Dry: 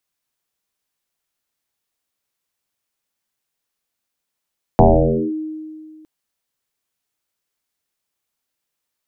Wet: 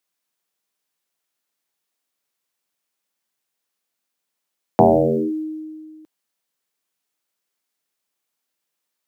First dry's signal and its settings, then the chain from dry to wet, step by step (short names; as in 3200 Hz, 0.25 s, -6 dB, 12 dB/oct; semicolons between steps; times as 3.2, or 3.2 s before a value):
FM tone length 1.26 s, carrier 312 Hz, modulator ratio 0.27, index 6.3, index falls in 0.54 s linear, decay 2.08 s, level -5 dB
HPF 170 Hz 12 dB/oct; short-mantissa float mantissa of 6-bit